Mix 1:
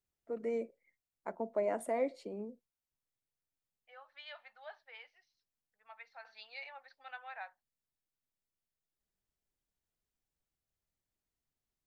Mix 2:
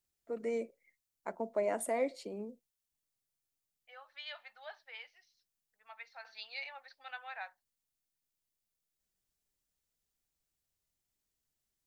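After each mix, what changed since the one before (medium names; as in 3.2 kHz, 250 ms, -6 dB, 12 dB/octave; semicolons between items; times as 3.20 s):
master: add treble shelf 2.8 kHz +10 dB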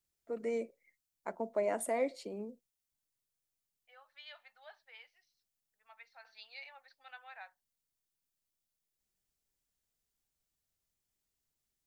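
second voice -6.5 dB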